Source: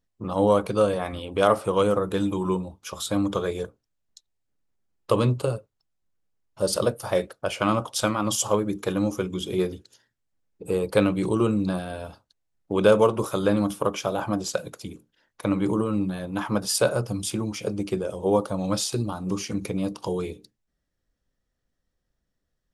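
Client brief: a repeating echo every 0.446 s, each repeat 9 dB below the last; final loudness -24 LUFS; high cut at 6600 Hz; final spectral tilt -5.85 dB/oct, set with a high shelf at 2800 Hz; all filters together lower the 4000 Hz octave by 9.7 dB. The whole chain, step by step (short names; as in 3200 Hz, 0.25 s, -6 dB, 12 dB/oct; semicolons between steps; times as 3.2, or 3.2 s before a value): LPF 6600 Hz; high shelf 2800 Hz -6.5 dB; bell 4000 Hz -6.5 dB; feedback echo 0.446 s, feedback 35%, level -9 dB; gain +1.5 dB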